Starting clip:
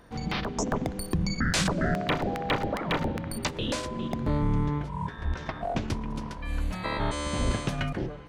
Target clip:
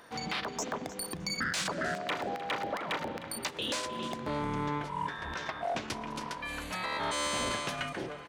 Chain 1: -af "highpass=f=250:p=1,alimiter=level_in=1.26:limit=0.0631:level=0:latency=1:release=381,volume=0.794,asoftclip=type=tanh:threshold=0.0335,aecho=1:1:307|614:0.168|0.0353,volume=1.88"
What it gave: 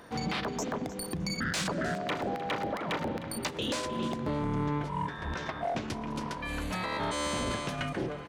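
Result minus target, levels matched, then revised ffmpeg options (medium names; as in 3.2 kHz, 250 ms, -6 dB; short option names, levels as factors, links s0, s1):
250 Hz band +4.5 dB
-af "highpass=f=850:p=1,alimiter=level_in=1.26:limit=0.0631:level=0:latency=1:release=381,volume=0.794,asoftclip=type=tanh:threshold=0.0335,aecho=1:1:307|614:0.168|0.0353,volume=1.88"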